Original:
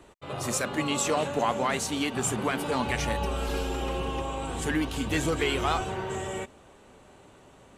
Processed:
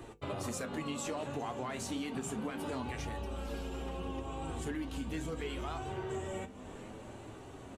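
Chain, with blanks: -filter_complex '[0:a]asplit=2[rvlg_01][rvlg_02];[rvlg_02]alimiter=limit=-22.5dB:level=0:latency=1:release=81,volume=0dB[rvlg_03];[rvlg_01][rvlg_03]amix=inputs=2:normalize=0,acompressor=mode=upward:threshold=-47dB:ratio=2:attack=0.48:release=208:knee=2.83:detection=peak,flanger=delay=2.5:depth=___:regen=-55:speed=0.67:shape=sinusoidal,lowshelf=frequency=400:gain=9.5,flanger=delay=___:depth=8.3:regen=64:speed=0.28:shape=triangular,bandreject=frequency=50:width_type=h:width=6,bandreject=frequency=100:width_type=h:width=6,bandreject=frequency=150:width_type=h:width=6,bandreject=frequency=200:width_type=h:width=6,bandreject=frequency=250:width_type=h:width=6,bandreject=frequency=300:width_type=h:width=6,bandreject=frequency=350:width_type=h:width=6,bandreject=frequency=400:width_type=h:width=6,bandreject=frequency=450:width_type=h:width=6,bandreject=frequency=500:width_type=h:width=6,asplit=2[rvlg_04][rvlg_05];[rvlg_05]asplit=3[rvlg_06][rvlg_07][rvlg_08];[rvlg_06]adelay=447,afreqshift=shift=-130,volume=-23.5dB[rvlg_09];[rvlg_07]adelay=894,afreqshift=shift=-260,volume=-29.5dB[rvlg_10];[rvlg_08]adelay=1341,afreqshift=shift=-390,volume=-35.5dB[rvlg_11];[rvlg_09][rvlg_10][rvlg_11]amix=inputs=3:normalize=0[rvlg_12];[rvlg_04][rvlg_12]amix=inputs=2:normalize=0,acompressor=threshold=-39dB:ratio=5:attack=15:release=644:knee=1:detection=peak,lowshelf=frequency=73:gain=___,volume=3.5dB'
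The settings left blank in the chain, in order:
1.9, 8.5, -6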